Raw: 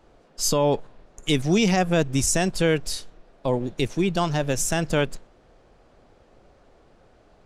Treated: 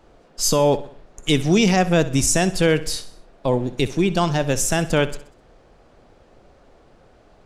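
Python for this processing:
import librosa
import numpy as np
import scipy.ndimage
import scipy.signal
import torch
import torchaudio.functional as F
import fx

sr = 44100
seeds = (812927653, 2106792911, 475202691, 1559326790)

y = fx.echo_feedback(x, sr, ms=64, feedback_pct=47, wet_db=-16)
y = F.gain(torch.from_numpy(y), 3.5).numpy()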